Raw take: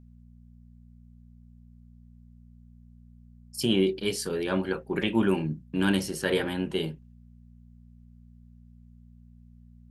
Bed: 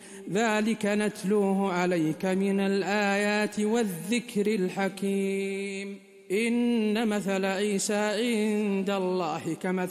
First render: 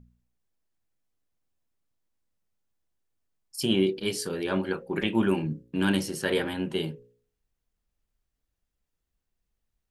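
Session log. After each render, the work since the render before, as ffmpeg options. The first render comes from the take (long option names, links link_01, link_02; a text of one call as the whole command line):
ffmpeg -i in.wav -af "bandreject=frequency=60:width_type=h:width=4,bandreject=frequency=120:width_type=h:width=4,bandreject=frequency=180:width_type=h:width=4,bandreject=frequency=240:width_type=h:width=4,bandreject=frequency=300:width_type=h:width=4,bandreject=frequency=360:width_type=h:width=4,bandreject=frequency=420:width_type=h:width=4,bandreject=frequency=480:width_type=h:width=4,bandreject=frequency=540:width_type=h:width=4" out.wav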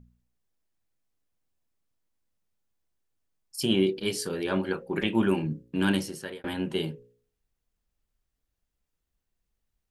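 ffmpeg -i in.wav -filter_complex "[0:a]asplit=2[link_01][link_02];[link_01]atrim=end=6.44,asetpts=PTS-STARTPTS,afade=type=out:start_time=5.91:duration=0.53[link_03];[link_02]atrim=start=6.44,asetpts=PTS-STARTPTS,afade=type=in:duration=0.004:curve=hsin[link_04];[link_03][link_04]concat=n=2:v=0:a=1" out.wav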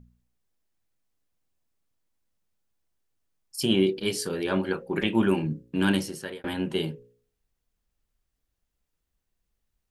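ffmpeg -i in.wav -af "volume=1.5dB" out.wav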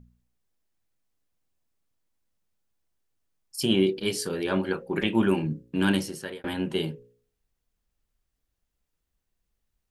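ffmpeg -i in.wav -af anull out.wav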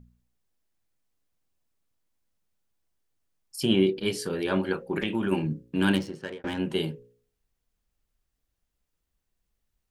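ffmpeg -i in.wav -filter_complex "[0:a]asettb=1/sr,asplit=3[link_01][link_02][link_03];[link_01]atrim=end=3.584[link_04];[link_02]atrim=start=3.58:end=4.39,asetpts=PTS-STARTPTS,afade=type=in:duration=0.004:curve=qsin,afade=type=out:start_time=0.806:duration=0.004:curve=qsin,bass=frequency=250:gain=1,treble=frequency=4000:gain=-5[link_05];[link_03]atrim=start=4.386[link_06];[link_04][link_05]acrossfade=duration=0.004:curve1=hsin:curve2=qsin[link_07];[link_07][link_06]acrossfade=duration=0.004:curve1=qsin:curve2=hsin,asplit=3[link_08][link_09][link_10];[link_08]afade=type=out:start_time=4.91:duration=0.02[link_11];[link_09]acompressor=threshold=-23dB:ratio=6:attack=3.2:release=140:knee=1:detection=peak,afade=type=in:start_time=4.91:duration=0.02,afade=type=out:start_time=5.31:duration=0.02[link_12];[link_10]afade=type=in:start_time=5.31:duration=0.02[link_13];[link_11][link_12][link_13]amix=inputs=3:normalize=0,asettb=1/sr,asplit=3[link_14][link_15][link_16];[link_14]atrim=end=5.954[link_17];[link_15]atrim=start=5.95:end=6.58,asetpts=PTS-STARTPTS,afade=type=in:duration=0.004:curve=qsin,afade=type=out:start_time=0.626:duration=0.004:curve=qsin,adynamicsmooth=sensitivity=8:basefreq=2100[link_18];[link_16]atrim=start=6.576[link_19];[link_17][link_18]acrossfade=duration=0.004:curve1=hsin:curve2=qsin[link_20];[link_20][link_19]acrossfade=duration=0.004:curve1=qsin:curve2=hsin" out.wav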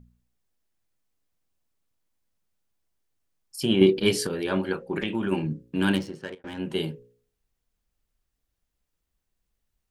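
ffmpeg -i in.wav -filter_complex "[0:a]asettb=1/sr,asplit=3[link_01][link_02][link_03];[link_01]atrim=end=3.814[link_04];[link_02]atrim=start=3.81:end=4.27,asetpts=PTS-STARTPTS,afade=type=in:duration=0.004:curve=qsin,afade=type=out:start_time=0.456:duration=0.004:curve=qsin,acontrast=58[link_05];[link_03]atrim=start=4.266[link_06];[link_04][link_05]acrossfade=duration=0.004:curve1=hsin:curve2=qsin[link_07];[link_07][link_06]acrossfade=duration=0.004:curve1=qsin:curve2=hsin,asettb=1/sr,asplit=3[link_08][link_09][link_10];[link_08]atrim=end=4.794[link_11];[link_09]atrim=start=4.79:end=5.6,asetpts=PTS-STARTPTS,afade=type=in:duration=0.004:curve=qsin,afade=type=out:start_time=0.806:duration=0.004:curve=qsin,lowpass=10000[link_12];[link_10]atrim=start=5.596[link_13];[link_11][link_12]acrossfade=duration=0.004:curve1=hsin:curve2=qsin[link_14];[link_14][link_13]acrossfade=duration=0.004:curve1=qsin:curve2=hsin,asplit=2[link_15][link_16];[link_15]atrim=end=6.35,asetpts=PTS-STARTPTS,afade=type=out:start_time=6.346:duration=0.004:curve=hsin:silence=0.237137[link_17];[link_16]atrim=start=6.35,asetpts=PTS-STARTPTS,afade=type=in:duration=0.43:silence=0.237137[link_18];[link_17][link_18]concat=n=2:v=0:a=1" out.wav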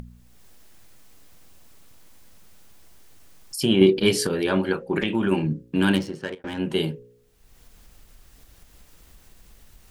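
ffmpeg -i in.wav -filter_complex "[0:a]asplit=2[link_01][link_02];[link_02]alimiter=limit=-17.5dB:level=0:latency=1:release=241,volume=-2dB[link_03];[link_01][link_03]amix=inputs=2:normalize=0,acompressor=mode=upward:threshold=-30dB:ratio=2.5" out.wav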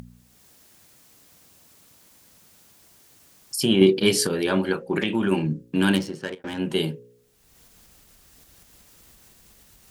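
ffmpeg -i in.wav -af "highpass=frequency=190:poles=1,bass=frequency=250:gain=4,treble=frequency=4000:gain=4" out.wav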